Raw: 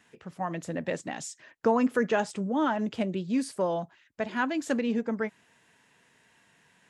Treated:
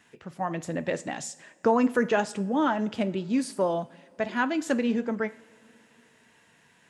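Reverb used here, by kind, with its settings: two-slope reverb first 0.59 s, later 4.3 s, from -21 dB, DRR 13.5 dB; gain +2 dB

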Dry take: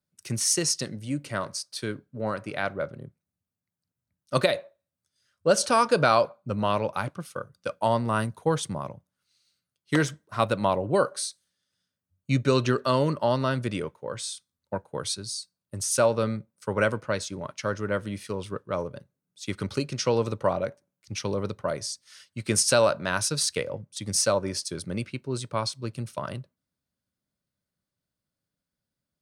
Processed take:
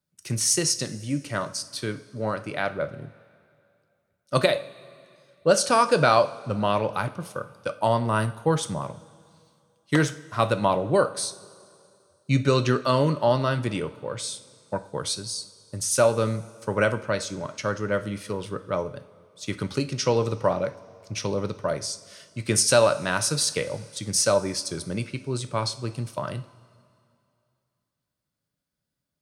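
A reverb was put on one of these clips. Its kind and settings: two-slope reverb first 0.41 s, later 2.5 s, from -16 dB, DRR 9.5 dB; gain +1.5 dB

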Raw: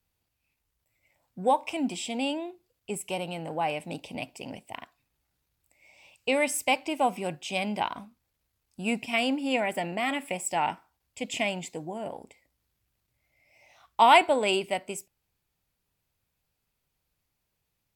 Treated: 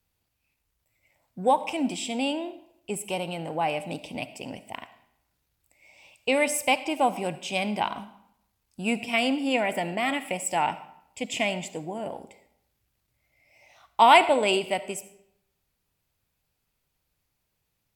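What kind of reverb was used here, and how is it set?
digital reverb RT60 0.74 s, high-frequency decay 0.8×, pre-delay 30 ms, DRR 14 dB; gain +2 dB

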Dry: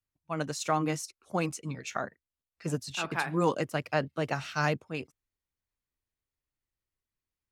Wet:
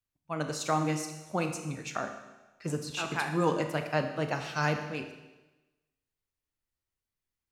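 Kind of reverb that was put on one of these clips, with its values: Schroeder reverb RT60 1.1 s, combs from 26 ms, DRR 6 dB; gain -1 dB

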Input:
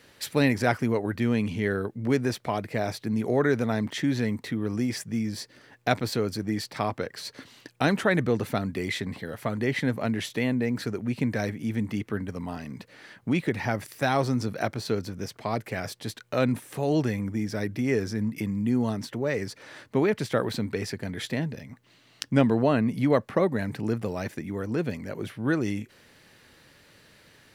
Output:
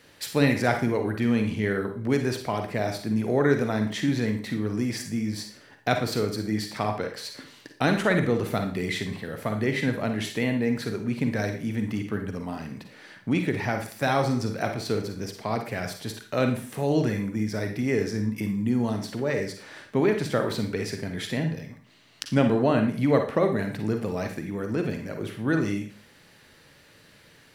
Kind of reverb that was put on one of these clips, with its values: Schroeder reverb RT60 0.43 s, DRR 5 dB

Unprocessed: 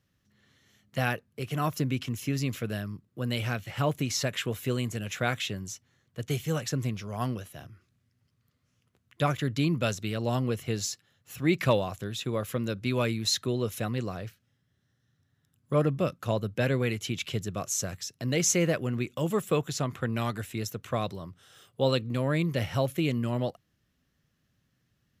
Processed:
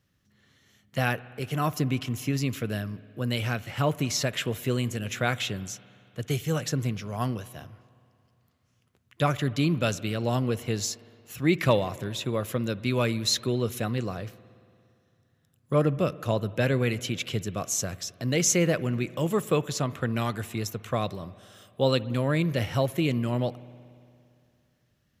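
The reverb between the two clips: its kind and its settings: spring tank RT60 2.5 s, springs 57 ms, chirp 75 ms, DRR 18 dB; gain +2 dB

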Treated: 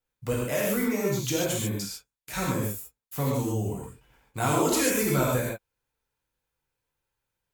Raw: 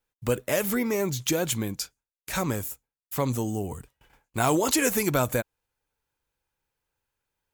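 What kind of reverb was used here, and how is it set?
non-linear reverb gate 0.17 s flat, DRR -4.5 dB; gain -6.5 dB

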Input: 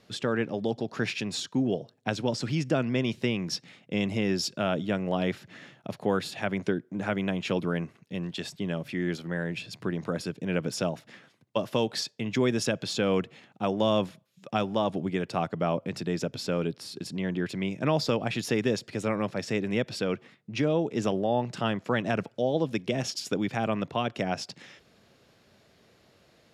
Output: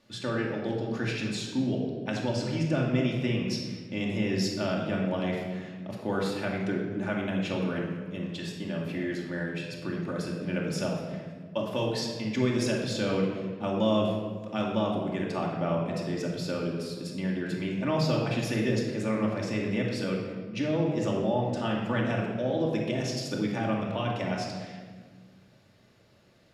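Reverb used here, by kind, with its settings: shoebox room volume 1600 m³, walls mixed, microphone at 2.5 m; gain -6 dB

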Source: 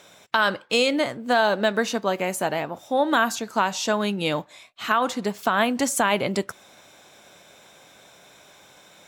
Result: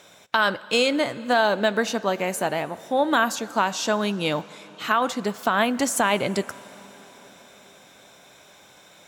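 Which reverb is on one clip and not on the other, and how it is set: plate-style reverb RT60 4.5 s, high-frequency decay 0.8×, pre-delay 85 ms, DRR 18.5 dB

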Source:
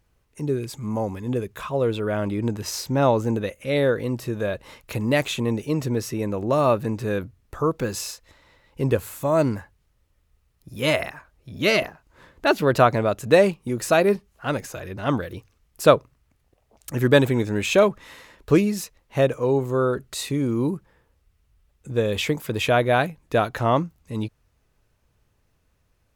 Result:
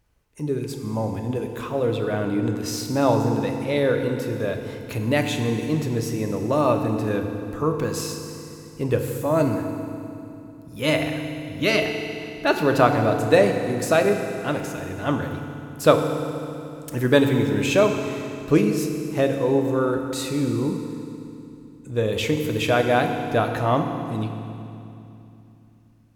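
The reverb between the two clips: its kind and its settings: FDN reverb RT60 2.8 s, low-frequency decay 1.4×, high-frequency decay 0.9×, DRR 4 dB; gain -1.5 dB

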